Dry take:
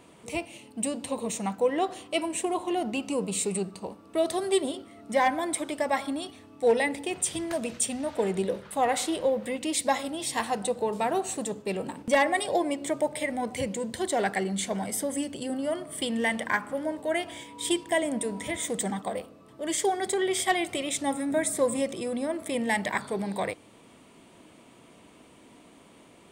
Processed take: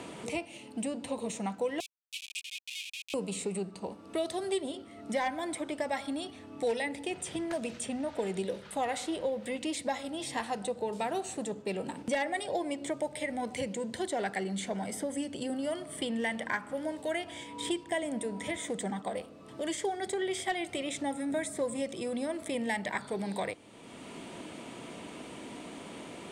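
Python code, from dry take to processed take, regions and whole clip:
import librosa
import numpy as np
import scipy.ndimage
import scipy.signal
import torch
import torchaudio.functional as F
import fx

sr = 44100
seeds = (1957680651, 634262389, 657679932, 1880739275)

y = fx.chain(x, sr, fx.comb(ms=4.0, depth=0.97),
    fx.schmitt(flips_db=-25.5),
    fx.cheby_ripple_highpass(hz=2400.0, ripple_db=3), at=(1.8, 3.14))
y = scipy.signal.sosfilt(scipy.signal.bessel(2, 8800.0, 'lowpass', norm='mag', fs=sr, output='sos'), y)
y = fx.notch(y, sr, hz=1100.0, q=13.0)
y = fx.band_squash(y, sr, depth_pct=70)
y = y * librosa.db_to_amplitude(-5.5)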